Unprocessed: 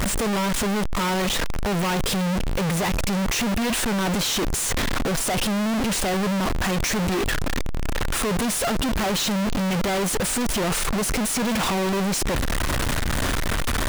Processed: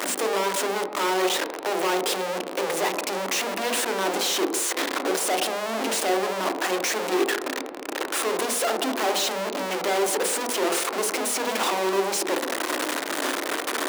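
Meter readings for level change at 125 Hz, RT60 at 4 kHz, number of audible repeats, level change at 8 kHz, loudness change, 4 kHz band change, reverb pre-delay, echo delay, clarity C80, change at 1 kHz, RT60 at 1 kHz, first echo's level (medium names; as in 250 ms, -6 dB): under -20 dB, 1.1 s, no echo, -1.0 dB, -1.5 dB, -1.0 dB, 28 ms, no echo, 11.0 dB, +1.5 dB, 1.1 s, no echo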